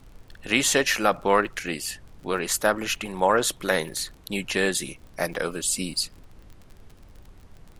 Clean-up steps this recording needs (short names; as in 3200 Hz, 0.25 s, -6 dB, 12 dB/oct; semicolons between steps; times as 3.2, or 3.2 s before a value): de-click; noise print and reduce 20 dB